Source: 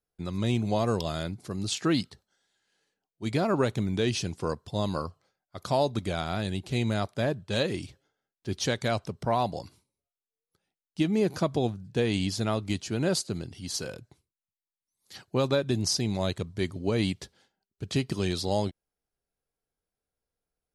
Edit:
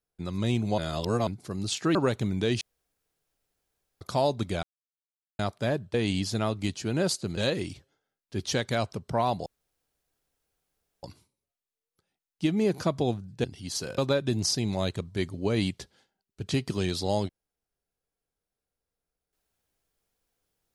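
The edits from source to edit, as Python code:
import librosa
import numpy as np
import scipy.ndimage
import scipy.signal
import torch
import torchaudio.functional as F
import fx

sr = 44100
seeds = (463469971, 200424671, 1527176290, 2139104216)

y = fx.edit(x, sr, fx.reverse_span(start_s=0.78, length_s=0.49),
    fx.cut(start_s=1.95, length_s=1.56),
    fx.room_tone_fill(start_s=4.17, length_s=1.4),
    fx.silence(start_s=6.19, length_s=0.76),
    fx.insert_room_tone(at_s=9.59, length_s=1.57),
    fx.move(start_s=12.0, length_s=1.43, to_s=7.5),
    fx.cut(start_s=13.97, length_s=1.43), tone=tone)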